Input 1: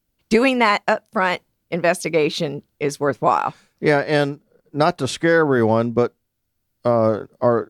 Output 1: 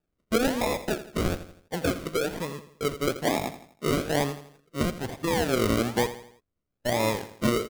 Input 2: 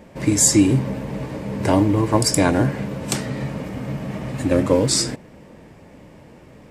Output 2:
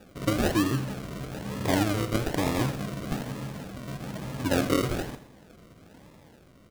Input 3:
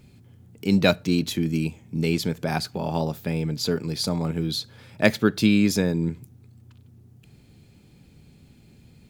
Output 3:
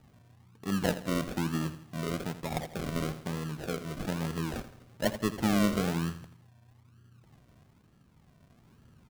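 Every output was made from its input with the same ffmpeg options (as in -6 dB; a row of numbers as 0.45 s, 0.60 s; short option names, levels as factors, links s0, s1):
-af "tremolo=f=0.68:d=0.34,acrusher=samples=41:mix=1:aa=0.000001:lfo=1:lforange=24.6:lforate=1.1,aecho=1:1:83|166|249|332:0.224|0.0963|0.0414|0.0178,volume=0.447"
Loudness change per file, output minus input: -8.5 LU, -9.5 LU, -8.5 LU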